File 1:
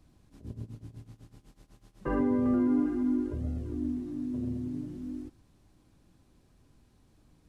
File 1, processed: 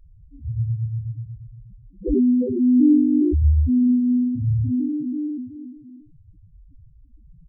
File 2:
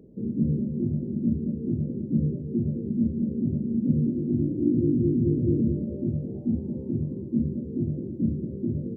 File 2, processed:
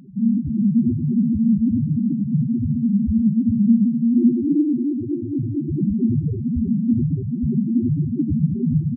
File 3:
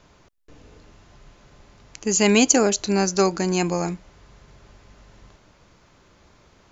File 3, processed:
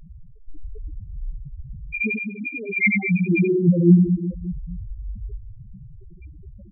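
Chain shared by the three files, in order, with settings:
nonlinear frequency compression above 1700 Hz 4:1; negative-ratio compressor -27 dBFS, ratio -0.5; reverse bouncing-ball echo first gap 90 ms, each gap 1.3×, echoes 5; loudest bins only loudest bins 2; match loudness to -20 LUFS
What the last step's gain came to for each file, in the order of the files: +16.5, +12.5, +12.0 dB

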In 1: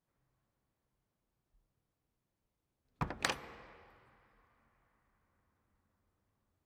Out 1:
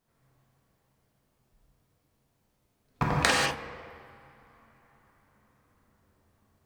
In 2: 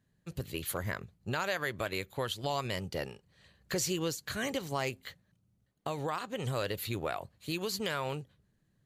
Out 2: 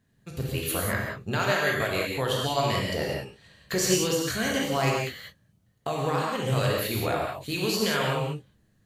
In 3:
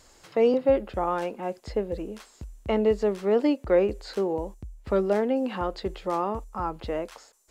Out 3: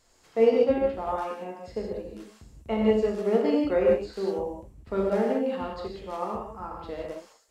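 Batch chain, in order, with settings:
non-linear reverb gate 0.22 s flat, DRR -3 dB; upward expander 1.5:1, over -28 dBFS; match loudness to -27 LUFS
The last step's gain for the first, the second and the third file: +8.0, +5.5, -3.0 dB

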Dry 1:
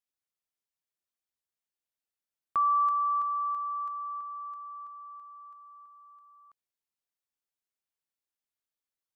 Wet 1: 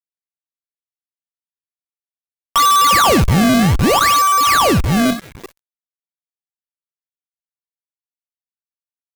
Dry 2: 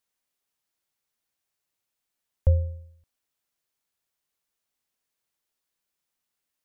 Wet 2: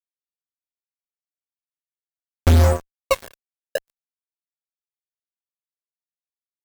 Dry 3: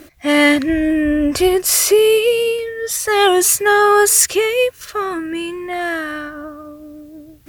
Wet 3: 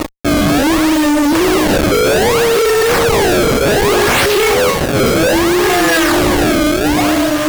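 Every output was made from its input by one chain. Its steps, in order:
bell 67 Hz -9 dB 0.92 oct; de-hum 53.07 Hz, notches 25; reverse; compressor 4:1, threshold -27 dBFS; reverse; resonator 330 Hz, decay 0.73 s, mix 50%; delay with a stepping band-pass 0.637 s, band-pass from 420 Hz, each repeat 0.7 oct, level -2 dB; decimation with a swept rate 27×, swing 160% 0.64 Hz; resonator 550 Hz, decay 0.43 s, mix 70%; fuzz box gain 57 dB, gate -59 dBFS; gain +3 dB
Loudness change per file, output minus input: +17.0, +7.0, +3.0 LU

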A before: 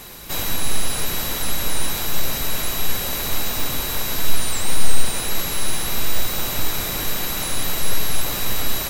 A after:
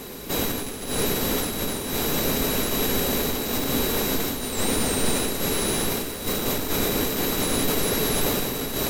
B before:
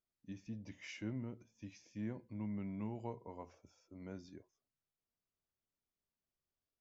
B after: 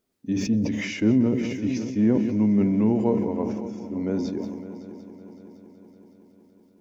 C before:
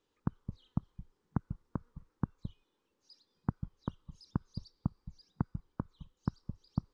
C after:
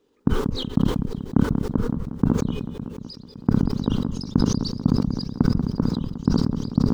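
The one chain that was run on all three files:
one diode to ground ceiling -13.5 dBFS; small resonant body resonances 260/410 Hz, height 12 dB, ringing for 25 ms; on a send: multi-head echo 0.187 s, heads first and third, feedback 65%, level -15 dB; on the sum: sustainer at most 34 dB/s; match loudness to -24 LUFS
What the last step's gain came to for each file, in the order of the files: -1.0, +12.5, +6.5 dB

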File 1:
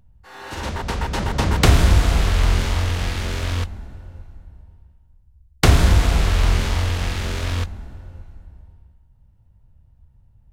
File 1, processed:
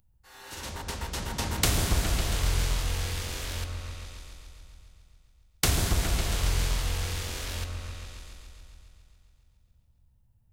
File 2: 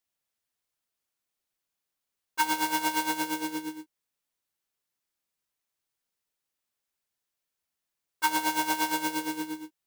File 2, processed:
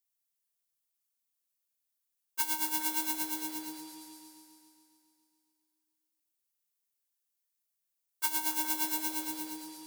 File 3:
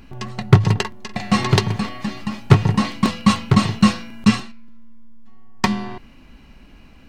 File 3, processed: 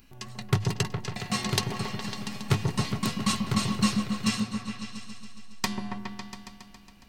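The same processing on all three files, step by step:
pre-emphasis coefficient 0.8; repeats that get brighter 0.138 s, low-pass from 750 Hz, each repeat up 1 oct, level -3 dB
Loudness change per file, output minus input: -9.5, -3.0, -10.5 LU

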